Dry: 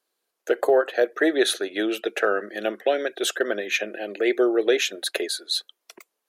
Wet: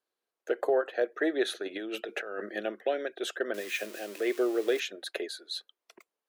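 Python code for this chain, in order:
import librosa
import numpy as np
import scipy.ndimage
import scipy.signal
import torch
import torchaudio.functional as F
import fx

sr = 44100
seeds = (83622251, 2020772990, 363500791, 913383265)

y = fx.crossing_spikes(x, sr, level_db=-21.0, at=(3.54, 4.8))
y = fx.high_shelf(y, sr, hz=4800.0, db=-9.5)
y = fx.over_compress(y, sr, threshold_db=-29.0, ratio=-1.0, at=(1.62, 2.6), fade=0.02)
y = y * librosa.db_to_amplitude(-7.5)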